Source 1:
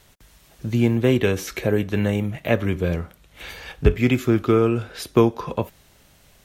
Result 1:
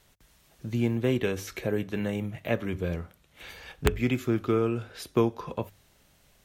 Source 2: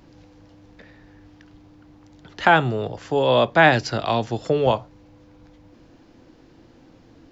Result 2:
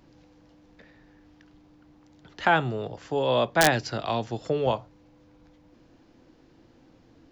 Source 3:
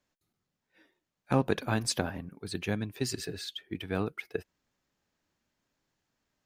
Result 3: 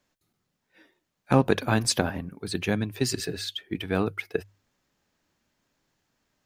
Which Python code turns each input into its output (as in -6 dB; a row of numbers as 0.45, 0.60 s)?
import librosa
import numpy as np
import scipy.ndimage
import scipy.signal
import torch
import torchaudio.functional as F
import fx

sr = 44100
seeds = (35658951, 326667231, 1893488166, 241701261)

y = fx.hum_notches(x, sr, base_hz=50, count=2)
y = (np.mod(10.0 ** (2.5 / 20.0) * y + 1.0, 2.0) - 1.0) / 10.0 ** (2.5 / 20.0)
y = y * 10.0 ** (-30 / 20.0) / np.sqrt(np.mean(np.square(y)))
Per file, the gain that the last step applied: -7.5, -6.0, +6.0 dB